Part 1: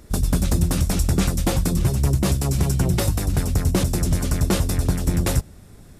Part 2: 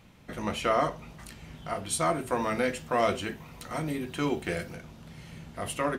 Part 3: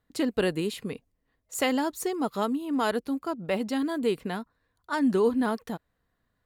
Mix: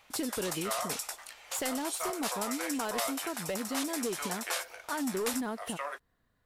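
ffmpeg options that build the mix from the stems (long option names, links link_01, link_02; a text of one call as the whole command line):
ffmpeg -i stem1.wav -i stem2.wav -i stem3.wav -filter_complex "[0:a]highpass=frequency=770:width=0.5412,highpass=frequency=770:width=1.3066,volume=-6.5dB[link_01];[1:a]highpass=frequency=610:width=0.5412,highpass=frequency=610:width=1.3066,volume=0.5dB[link_02];[2:a]volume=1dB,asplit=2[link_03][link_04];[link_04]apad=whole_len=264377[link_05];[link_01][link_05]sidechaingate=range=-33dB:threshold=-60dB:ratio=16:detection=peak[link_06];[link_02][link_03]amix=inputs=2:normalize=0,asoftclip=type=hard:threshold=-19.5dB,acompressor=threshold=-35dB:ratio=3,volume=0dB[link_07];[link_06][link_07]amix=inputs=2:normalize=0" out.wav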